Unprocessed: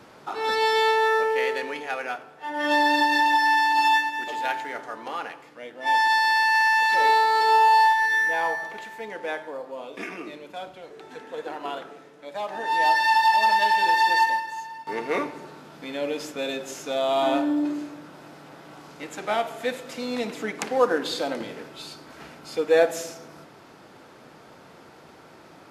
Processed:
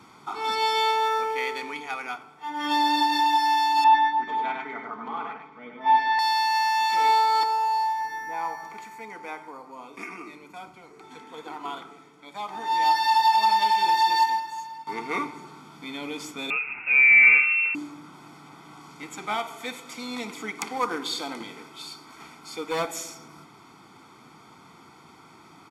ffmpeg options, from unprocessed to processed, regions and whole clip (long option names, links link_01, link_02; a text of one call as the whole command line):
ffmpeg -i in.wav -filter_complex "[0:a]asettb=1/sr,asplit=3[link_01][link_02][link_03];[link_01]atrim=end=3.844[link_04];[link_02]atrim=start=3.84:end=6.19,asetpts=PTS-STARTPTS,afade=type=in:duration=0.004:curve=qsin,afade=type=out:start_time=2.346:duration=0.004:curve=qsin,lowpass=1900,aecho=1:1:4.6:0.86,atrim=end_sample=103635,aecho=1:1:99:0.668,atrim=end_sample=103635[link_05];[link_03]atrim=start=6.186[link_06];[link_04][link_05]acrossfade=duration=0.004:curve1=hsin:curve2=qsin[link_07];[link_07][link_06]acrossfade=duration=0.004:curve1=qsin:curve2=hsin,asettb=1/sr,asplit=3[link_08][link_09][link_10];[link_08]atrim=end=7.434[link_11];[link_09]atrim=start=7.43:end=11.04,asetpts=PTS-STARTPTS,afade=type=in:duration=0.004:curve=qsin,afade=type=out:start_time=3.606:duration=0.004:curve=qsin,equalizer=frequency=3400:width=4.7:gain=-11.5,acrossover=split=340|1400[link_12][link_13][link_14];[link_12]acompressor=threshold=-46dB:ratio=4[link_15];[link_13]acompressor=threshold=-25dB:ratio=4[link_16];[link_14]acompressor=threshold=-35dB:ratio=4[link_17];[link_15][link_16][link_17]amix=inputs=3:normalize=0[link_18];[link_10]atrim=start=11.036[link_19];[link_11][link_18]acrossfade=duration=0.004:curve1=hsin:curve2=qsin[link_20];[link_20][link_19]acrossfade=duration=0.004:curve1=qsin:curve2=hsin,asettb=1/sr,asplit=3[link_21][link_22][link_23];[link_21]atrim=end=16.504[link_24];[link_22]atrim=start=16.5:end=17.75,asetpts=PTS-STARTPTS,afade=type=in:duration=0.004:curve=qsin,afade=type=out:start_time=1.246:duration=0.004:curve=qsin,acontrast=72,bandreject=frequency=1900:width=8.9,lowpass=frequency=2600:width_type=q:width=0.5098,lowpass=frequency=2600:width_type=q:width=0.6013,lowpass=frequency=2600:width_type=q:width=0.9,lowpass=frequency=2600:width_type=q:width=2.563,afreqshift=-3000[link_25];[link_23]atrim=start=17.746[link_26];[link_24][link_25]acrossfade=duration=0.004:curve1=hsin:curve2=qsin[link_27];[link_27][link_26]acrossfade=duration=0.004:curve1=qsin:curve2=hsin,asettb=1/sr,asplit=3[link_28][link_29][link_30];[link_28]atrim=end=19.364[link_31];[link_29]atrim=start=19.36:end=23.15,asetpts=PTS-STARTPTS,afade=type=in:duration=0.004:curve=qsin,afade=type=out:start_time=3.786:duration=0.004:curve=qsin,aeval=exprs='clip(val(0),-1,0.141)':channel_layout=same,bass=frequency=250:gain=-6,treble=frequency=4000:gain=1[link_32];[link_30]atrim=start=23.146[link_33];[link_31][link_32]acrossfade=duration=0.004:curve1=hsin:curve2=qsin[link_34];[link_34][link_33]acrossfade=duration=0.004:curve1=qsin:curve2=hsin,highpass=frequency=120:poles=1,equalizer=frequency=7400:width=2.7:gain=2.5,aecho=1:1:0.9:0.79,volume=-3dB" out.wav